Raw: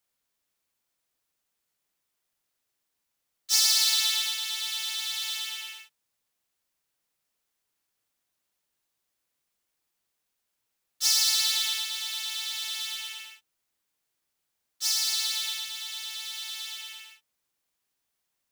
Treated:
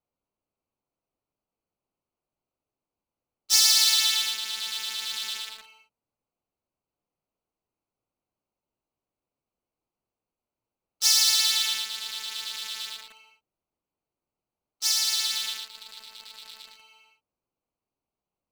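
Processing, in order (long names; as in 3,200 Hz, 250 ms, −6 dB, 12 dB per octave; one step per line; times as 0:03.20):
adaptive Wiener filter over 25 samples
level +3.5 dB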